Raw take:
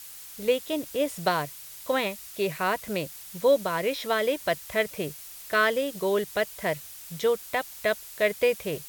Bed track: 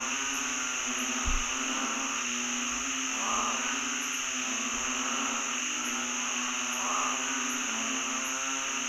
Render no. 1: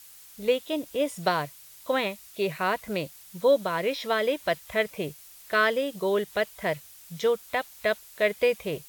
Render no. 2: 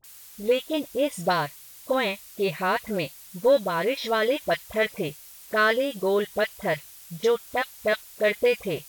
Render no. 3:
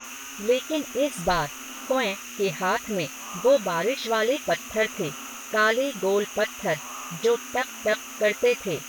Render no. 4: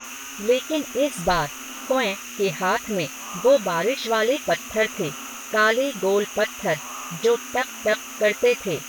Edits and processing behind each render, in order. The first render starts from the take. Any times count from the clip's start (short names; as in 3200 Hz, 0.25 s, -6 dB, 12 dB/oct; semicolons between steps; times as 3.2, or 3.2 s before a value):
noise print and reduce 6 dB
in parallel at -8.5 dB: soft clip -21.5 dBFS, distortion -12 dB; on the sum: dispersion highs, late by 40 ms, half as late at 1100 Hz
add bed track -7.5 dB
gain +2.5 dB